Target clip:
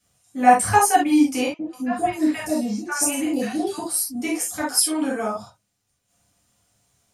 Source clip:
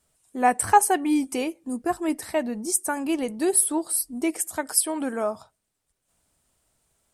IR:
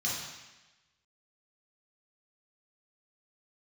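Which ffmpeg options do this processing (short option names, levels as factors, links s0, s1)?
-filter_complex "[0:a]asettb=1/sr,asplit=3[s0][s1][s2];[s0]atrim=end=1.464[s3];[s1]atrim=start=1.46:end=3.78,asetpts=PTS-STARTPTS,afade=t=in:d=0.004:c=qsin,afade=t=out:st=2.316:d=0.004:c=qsin,acrossover=split=860|3900[s4][s5][s6];[s4]adelay=130[s7];[s6]adelay=270[s8];[s7][s5][s8]amix=inputs=3:normalize=0,atrim=end_sample=102312[s9];[s2]atrim=start=3.776[s10];[s3][s9]acrossfade=d=0.004:c1=hsin:c2=qsin[s11];[s11][s10]acrossfade=d=0.004:c1=qsin:c2=hsin[s12];[1:a]atrim=start_sample=2205,atrim=end_sample=3528[s13];[s12][s13]afir=irnorm=-1:irlink=0"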